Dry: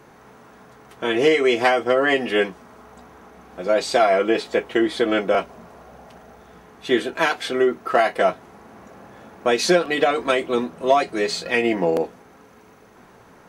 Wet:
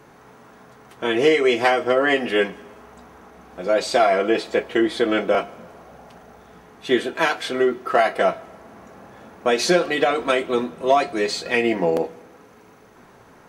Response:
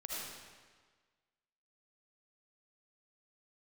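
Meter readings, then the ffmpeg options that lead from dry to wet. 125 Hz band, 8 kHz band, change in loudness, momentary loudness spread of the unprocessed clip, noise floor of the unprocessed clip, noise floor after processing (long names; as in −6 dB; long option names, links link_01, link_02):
0.0 dB, 0.0 dB, 0.0 dB, 7 LU, −50 dBFS, −49 dBFS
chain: -filter_complex "[0:a]flanger=delay=7:depth=5.5:regen=-78:speed=0.16:shape=sinusoidal,asplit=2[link_01][link_02];[1:a]atrim=start_sample=2205[link_03];[link_02][link_03]afir=irnorm=-1:irlink=0,volume=-21.5dB[link_04];[link_01][link_04]amix=inputs=2:normalize=0,volume=4dB"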